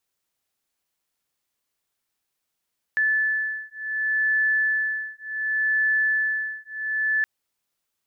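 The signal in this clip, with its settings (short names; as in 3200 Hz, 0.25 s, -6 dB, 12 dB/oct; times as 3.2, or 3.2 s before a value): beating tones 1740 Hz, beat 0.68 Hz, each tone -24 dBFS 4.27 s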